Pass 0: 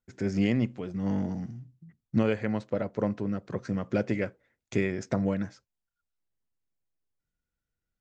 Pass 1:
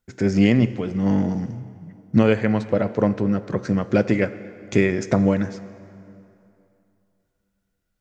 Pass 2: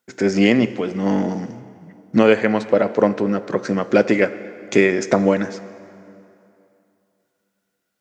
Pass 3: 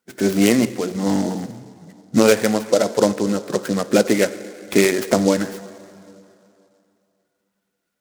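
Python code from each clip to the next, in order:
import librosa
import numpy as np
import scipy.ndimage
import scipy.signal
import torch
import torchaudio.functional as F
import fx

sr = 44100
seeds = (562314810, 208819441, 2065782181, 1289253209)

y1 = fx.rev_plate(x, sr, seeds[0], rt60_s=2.8, hf_ratio=0.75, predelay_ms=0, drr_db=13.5)
y1 = y1 * librosa.db_to_amplitude(9.0)
y2 = scipy.signal.sosfilt(scipy.signal.butter(2, 280.0, 'highpass', fs=sr, output='sos'), y1)
y2 = y2 * librosa.db_to_amplitude(6.0)
y3 = fx.spec_quant(y2, sr, step_db=15)
y3 = fx.noise_mod_delay(y3, sr, seeds[1], noise_hz=5300.0, depth_ms=0.052)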